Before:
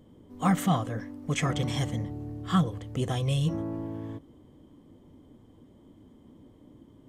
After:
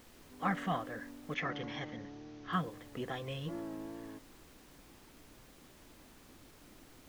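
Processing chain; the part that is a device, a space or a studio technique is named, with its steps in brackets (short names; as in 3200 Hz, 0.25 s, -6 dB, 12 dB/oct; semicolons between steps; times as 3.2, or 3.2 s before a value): horn gramophone (BPF 240–3300 Hz; bell 1700 Hz +7.5 dB 0.57 oct; wow and flutter; pink noise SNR 17 dB); 1.34–2.53 elliptic low-pass 6200 Hz, stop band 40 dB; gain -7 dB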